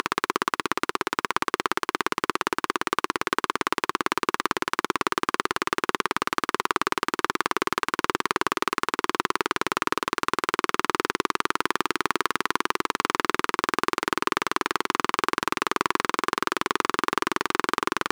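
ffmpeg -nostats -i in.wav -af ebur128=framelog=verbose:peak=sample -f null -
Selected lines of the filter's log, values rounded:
Integrated loudness:
  I:         -26.1 LUFS
  Threshold: -36.1 LUFS
Loudness range:
  LRA:         0.7 LU
  Threshold: -46.1 LUFS
  LRA low:   -26.4 LUFS
  LRA high:  -25.7 LUFS
Sample peak:
  Peak:       -2.5 dBFS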